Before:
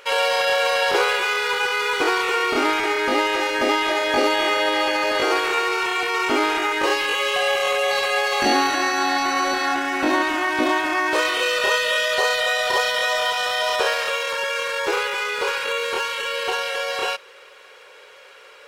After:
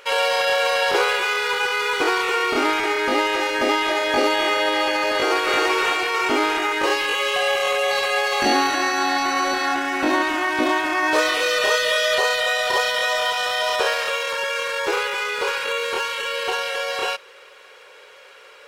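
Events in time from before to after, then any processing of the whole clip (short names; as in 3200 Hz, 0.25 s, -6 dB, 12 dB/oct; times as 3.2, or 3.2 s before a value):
5.12–5.61 echo throw 0.34 s, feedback 40%, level -2 dB
11.02–12.18 comb 6.6 ms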